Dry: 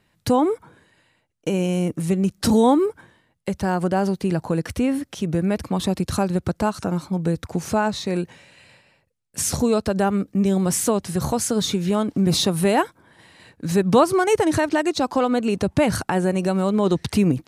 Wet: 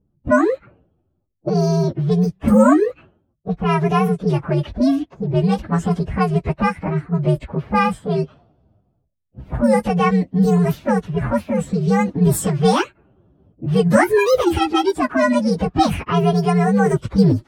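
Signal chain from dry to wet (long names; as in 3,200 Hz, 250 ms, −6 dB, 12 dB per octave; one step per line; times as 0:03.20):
partials spread apart or drawn together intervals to 128%
low-pass that shuts in the quiet parts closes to 340 Hz, open at −18 dBFS
level +6 dB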